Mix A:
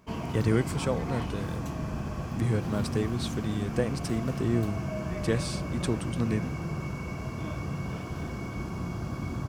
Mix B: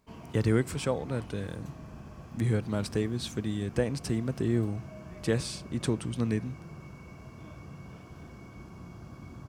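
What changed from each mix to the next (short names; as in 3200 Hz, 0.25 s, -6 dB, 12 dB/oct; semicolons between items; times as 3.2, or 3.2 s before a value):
background -12.0 dB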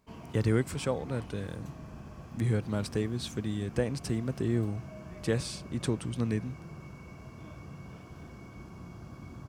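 speech: send off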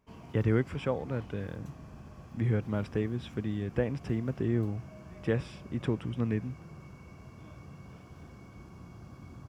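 speech: add polynomial smoothing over 25 samples; reverb: off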